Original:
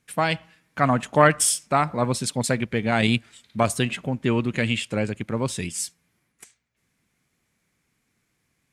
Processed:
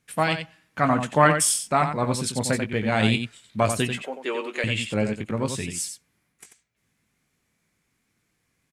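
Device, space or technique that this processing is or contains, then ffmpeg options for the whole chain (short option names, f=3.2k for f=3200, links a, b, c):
slapback doubling: -filter_complex "[0:a]asplit=3[a][b][c];[b]adelay=19,volume=-8.5dB[d];[c]adelay=90,volume=-7.5dB[e];[a][d][e]amix=inputs=3:normalize=0,asettb=1/sr,asplit=3[f][g][h];[f]atrim=end=4.024[i];[g]atrim=start=4.02:end=4.64,asetpts=PTS-STARTPTS,afade=t=in:d=0.004:c=qsin,afade=t=out:st=0.616:d=0.004:c=qsin,highpass=f=380:w=0.5412,highpass=f=380:w=1.3066[j];[h]atrim=start=4.636[k];[i][j]acrossfade=d=0.004:c1=hsin:c2=qsin[l];[l][k]acrossfade=d=0.004:c1=qsin:c2=hsin,volume=-1.5dB"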